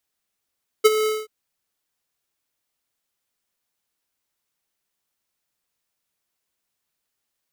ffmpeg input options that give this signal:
-f lavfi -i "aevalsrc='0.316*(2*lt(mod(432*t,1),0.5)-1)':d=0.431:s=44100,afade=t=in:d=0.017,afade=t=out:st=0.017:d=0.031:silence=0.282,afade=t=out:st=0.22:d=0.211"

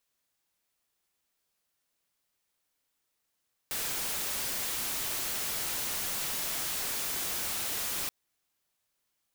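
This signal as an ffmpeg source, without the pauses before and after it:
-f lavfi -i "anoisesrc=c=white:a=0.0366:d=4.38:r=44100:seed=1"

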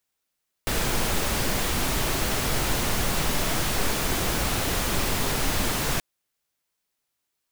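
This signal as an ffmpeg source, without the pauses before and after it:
-f lavfi -i "anoisesrc=c=pink:a=0.305:d=5.33:r=44100:seed=1"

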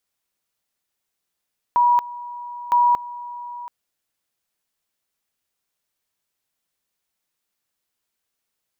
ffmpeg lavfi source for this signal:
-f lavfi -i "aevalsrc='pow(10,(-12.5-18*gte(mod(t,0.96),0.23))/20)*sin(2*PI*966*t)':d=1.92:s=44100"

